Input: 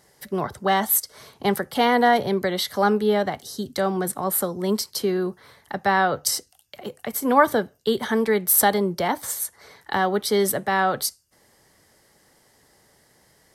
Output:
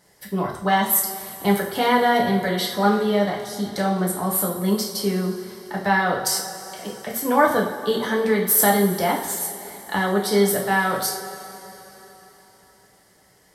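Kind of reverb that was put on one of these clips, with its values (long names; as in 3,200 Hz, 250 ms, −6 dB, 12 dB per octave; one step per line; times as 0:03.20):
coupled-rooms reverb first 0.47 s, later 4 s, from −18 dB, DRR −2.5 dB
level −3 dB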